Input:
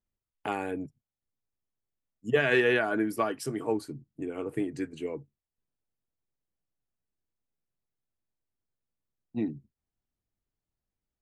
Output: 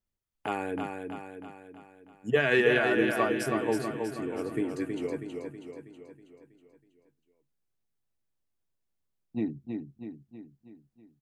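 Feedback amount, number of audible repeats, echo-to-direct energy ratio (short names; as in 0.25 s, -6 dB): 53%, 6, -3.5 dB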